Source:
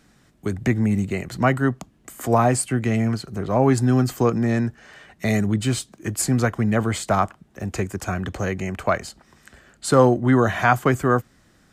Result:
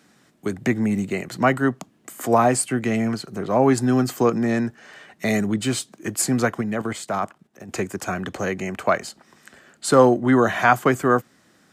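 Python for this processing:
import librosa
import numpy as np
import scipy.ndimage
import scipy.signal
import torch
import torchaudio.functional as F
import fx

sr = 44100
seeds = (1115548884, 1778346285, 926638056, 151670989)

y = fx.level_steps(x, sr, step_db=12, at=(6.61, 7.69))
y = scipy.signal.sosfilt(scipy.signal.butter(2, 180.0, 'highpass', fs=sr, output='sos'), y)
y = y * librosa.db_to_amplitude(1.5)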